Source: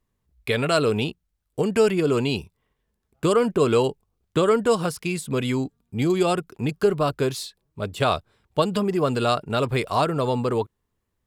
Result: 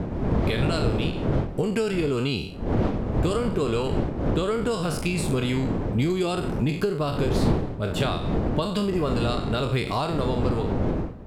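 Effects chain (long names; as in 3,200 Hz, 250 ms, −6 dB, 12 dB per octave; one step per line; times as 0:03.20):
peak hold with a decay on every bin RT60 0.47 s
wind on the microphone 430 Hz −23 dBFS
dynamic equaliser 3,700 Hz, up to +5 dB, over −39 dBFS, Q 0.98
downward compressor 5 to 1, threshold −25 dBFS, peak gain reduction 17.5 dB
low-shelf EQ 270 Hz +8 dB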